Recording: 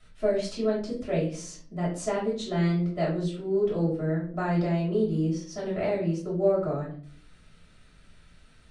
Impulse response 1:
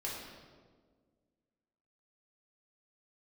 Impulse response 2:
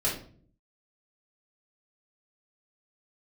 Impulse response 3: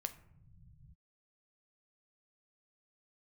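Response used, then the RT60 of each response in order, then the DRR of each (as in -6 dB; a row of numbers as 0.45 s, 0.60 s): 2; 1.6 s, 0.50 s, no single decay rate; -5.5 dB, -7.5 dB, 8.5 dB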